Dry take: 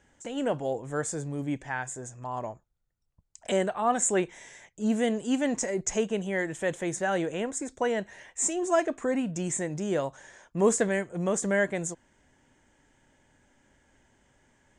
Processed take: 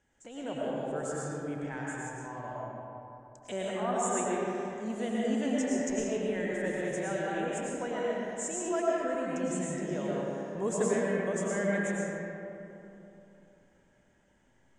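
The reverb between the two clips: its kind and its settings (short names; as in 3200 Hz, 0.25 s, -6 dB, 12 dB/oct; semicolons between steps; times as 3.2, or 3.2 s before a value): digital reverb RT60 3.1 s, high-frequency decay 0.45×, pre-delay 70 ms, DRR -6 dB; gain -10.5 dB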